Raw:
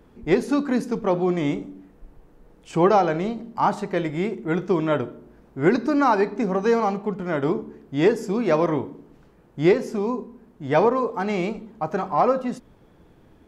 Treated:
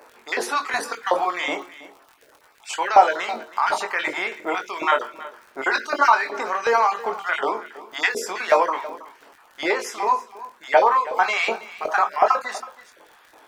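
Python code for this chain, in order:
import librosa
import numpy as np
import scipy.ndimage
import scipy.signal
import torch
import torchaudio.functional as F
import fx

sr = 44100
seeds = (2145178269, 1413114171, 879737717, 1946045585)

p1 = fx.spec_dropout(x, sr, seeds[0], share_pct=22)
p2 = scipy.signal.sosfilt(scipy.signal.butter(2, 230.0, 'highpass', fs=sr, output='sos'), p1)
p3 = fx.hum_notches(p2, sr, base_hz=60, count=6)
p4 = fx.over_compress(p3, sr, threshold_db=-28.0, ratio=-1.0)
p5 = p3 + (p4 * 10.0 ** (-1.0 / 20.0))
p6 = fx.filter_lfo_highpass(p5, sr, shape='saw_up', hz=2.7, low_hz=660.0, high_hz=1900.0, q=1.4)
p7 = fx.dmg_crackle(p6, sr, seeds[1], per_s=63.0, level_db=-41.0)
p8 = fx.doubler(p7, sr, ms=22.0, db=-7.0)
p9 = p8 + fx.echo_single(p8, sr, ms=324, db=-17.5, dry=0)
y = p9 * 10.0 ** (3.0 / 20.0)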